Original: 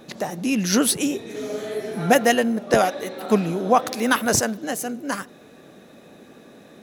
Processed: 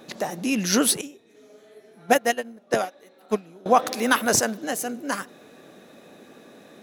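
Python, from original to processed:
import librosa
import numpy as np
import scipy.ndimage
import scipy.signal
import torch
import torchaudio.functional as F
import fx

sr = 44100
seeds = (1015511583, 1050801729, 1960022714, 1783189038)

y = fx.low_shelf(x, sr, hz=130.0, db=-11.0)
y = fx.upward_expand(y, sr, threshold_db=-26.0, expansion=2.5, at=(1.01, 3.66))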